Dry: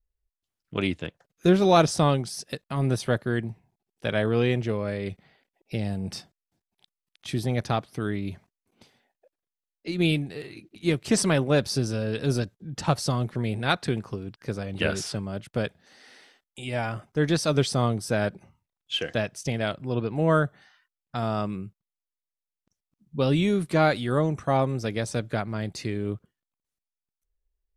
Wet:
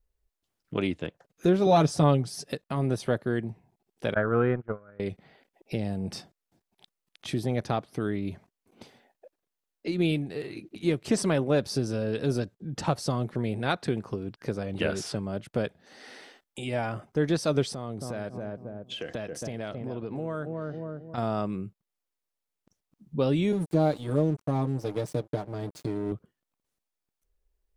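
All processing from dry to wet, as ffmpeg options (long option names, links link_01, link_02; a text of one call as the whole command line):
ffmpeg -i in.wav -filter_complex "[0:a]asettb=1/sr,asplit=3[link_01][link_02][link_03];[link_01]atrim=end=1.664[link_04];[link_02]atrim=start=1.66:end=2.52,asetpts=PTS-STARTPTS,afade=type=in:duration=0.004:curve=qsin,afade=type=out:start_time=0.856:duration=0.004:curve=qsin,equalizer=frequency=80:width_type=o:width=2.5:gain=4.5,aecho=1:1:7:0.68,atrim=end_sample=37926[link_05];[link_03]atrim=start=2.516[link_06];[link_04][link_05]acrossfade=duration=0.004:curve1=hsin:curve2=qsin[link_07];[link_07][link_06]acrossfade=duration=0.004:curve1=qsin:curve2=hsin,asettb=1/sr,asplit=3[link_08][link_09][link_10];[link_08]atrim=end=4.144[link_11];[link_09]atrim=start=4.14:end=5,asetpts=PTS-STARTPTS,afade=type=in:duration=0.004:curve=qsin,afade=type=out:start_time=0.856:duration=0.004:curve=qsin,agate=range=-30dB:threshold=-25dB:ratio=16:release=100:detection=peak,lowpass=frequency=1400:width_type=q:width=7,lowshelf=frequency=70:gain=10.5[link_12];[link_10]atrim=start=4.996[link_13];[link_11][link_12]acrossfade=duration=0.004:curve1=hsin:curve2=qsin[link_14];[link_14][link_13]acrossfade=duration=0.004:curve1=qsin:curve2=hsin,asettb=1/sr,asplit=3[link_15][link_16][link_17];[link_15]atrim=end=17.734[link_18];[link_16]atrim=start=17.73:end=21.18,asetpts=PTS-STARTPTS,afade=type=in:duration=0.004:curve=qsin,afade=type=out:start_time=3.446:duration=0.004:curve=qsin,asplit=2[link_19][link_20];[link_20]adelay=271,lowpass=frequency=830:poles=1,volume=-8dB,asplit=2[link_21][link_22];[link_22]adelay=271,lowpass=frequency=830:poles=1,volume=0.34,asplit=2[link_23][link_24];[link_24]adelay=271,lowpass=frequency=830:poles=1,volume=0.34,asplit=2[link_25][link_26];[link_26]adelay=271,lowpass=frequency=830:poles=1,volume=0.34[link_27];[link_19][link_21][link_23][link_25][link_27]amix=inputs=5:normalize=0,atrim=end_sample=152145,acompressor=threshold=-34dB:ratio=4:attack=3.2:release=140:knee=1:detection=peak[link_28];[link_17]atrim=start=21.176[link_29];[link_18][link_28]acrossfade=duration=0.004:curve1=hsin:curve2=qsin[link_30];[link_30][link_29]acrossfade=duration=0.004:curve1=qsin:curve2=hsin,asettb=1/sr,asplit=3[link_31][link_32][link_33];[link_31]atrim=end=23.524[link_34];[link_32]atrim=start=23.52:end=26.12,asetpts=PTS-STARTPTS,afade=type=in:duration=0.004:curve=qsin,afade=type=out:start_time=2.596:duration=0.004:curve=qsin,equalizer=frequency=1700:width=0.66:gain=-13,aecho=1:1:6.6:0.79,atrim=end_sample=114660,aeval=exprs='sgn(val(0))*max(abs(val(0))-0.0133,0)':channel_layout=same[link_35];[link_33]atrim=start=26.116[link_36];[link_34][link_35]acrossfade=duration=0.004:curve1=hsin:curve2=qsin[link_37];[link_37][link_36]acrossfade=duration=0.004:curve1=qsin:curve2=hsin,acompressor=threshold=-49dB:ratio=1.5,equalizer=frequency=420:width=0.41:gain=6,volume=3.5dB" out.wav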